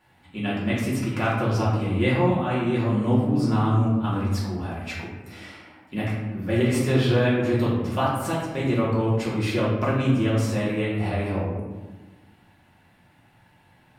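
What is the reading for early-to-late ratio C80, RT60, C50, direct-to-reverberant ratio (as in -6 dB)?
4.0 dB, 1.2 s, 1.0 dB, -8.0 dB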